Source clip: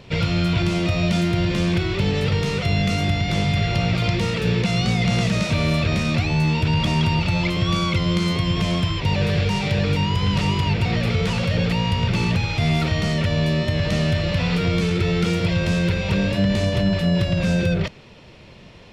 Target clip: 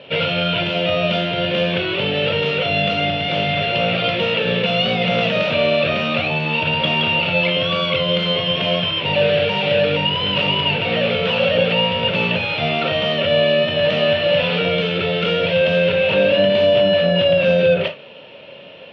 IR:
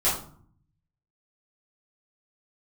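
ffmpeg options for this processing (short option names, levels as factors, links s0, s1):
-filter_complex "[0:a]highpass=330,equalizer=f=360:t=q:w=4:g=-8,equalizer=f=560:t=q:w=4:g=8,equalizer=f=800:t=q:w=4:g=-4,equalizer=f=1100:t=q:w=4:g=-6,equalizer=f=2000:t=q:w=4:g=-8,equalizer=f=2900:t=q:w=4:g=9,lowpass=f=3200:w=0.5412,lowpass=f=3200:w=1.3066,asplit=2[s0][s1];[1:a]atrim=start_sample=2205,atrim=end_sample=3528[s2];[s1][s2]afir=irnorm=-1:irlink=0,volume=0.188[s3];[s0][s3]amix=inputs=2:normalize=0,volume=1.78"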